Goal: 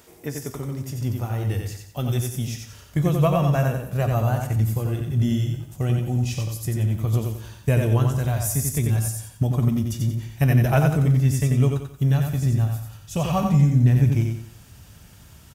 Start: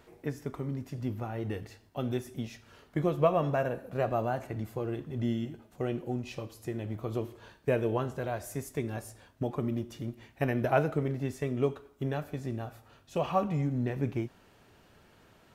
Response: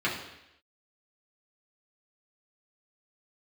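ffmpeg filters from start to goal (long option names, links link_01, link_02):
-filter_complex "[0:a]highpass=45,bass=frequency=250:gain=0,treble=frequency=4000:gain=15,bandreject=frequency=4200:width=12,asplit=2[link_01][link_02];[link_02]aecho=0:1:90|180|270|360:0.596|0.203|0.0689|0.0234[link_03];[link_01][link_03]amix=inputs=2:normalize=0,asubboost=boost=8:cutoff=130,volume=4dB"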